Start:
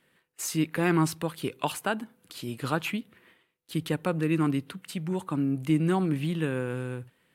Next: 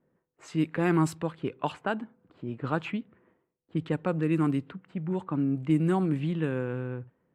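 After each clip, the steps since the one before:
parametric band 7,600 Hz +9 dB 0.23 octaves
low-pass that shuts in the quiet parts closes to 760 Hz, open at −20.5 dBFS
high-shelf EQ 2,700 Hz −10 dB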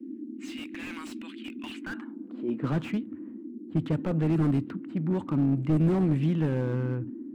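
high-pass filter sweep 2,600 Hz → 89 Hz, 0:01.78–0:02.87
noise in a band 220–330 Hz −41 dBFS
slew-rate limiting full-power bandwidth 21 Hz
level +1.5 dB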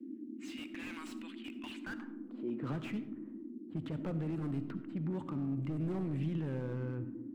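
brickwall limiter −23.5 dBFS, peak gain reduction 10 dB
convolution reverb RT60 0.95 s, pre-delay 30 ms, DRR 12 dB
level −6 dB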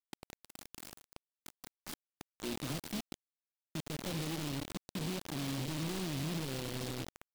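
bit-depth reduction 6 bits, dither none
short delay modulated by noise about 3,100 Hz, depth 0.16 ms
level −3 dB

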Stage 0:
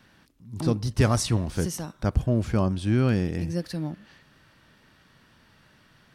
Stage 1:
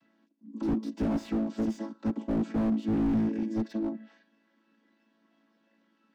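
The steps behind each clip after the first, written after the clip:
channel vocoder with a chord as carrier major triad, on A3
noise reduction from a noise print of the clip's start 8 dB
slew-rate limiting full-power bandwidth 16 Hz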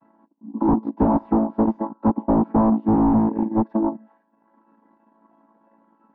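transient designer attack +3 dB, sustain −9 dB
low-pass with resonance 940 Hz, resonance Q 5.3
level +8 dB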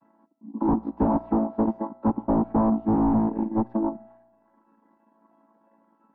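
tuned comb filter 60 Hz, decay 1.3 s, harmonics all, mix 40%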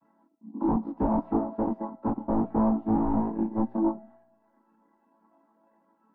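multi-voice chorus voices 6, 0.54 Hz, delay 24 ms, depth 3.9 ms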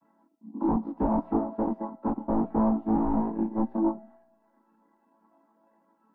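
parametric band 110 Hz −14 dB 0.24 octaves

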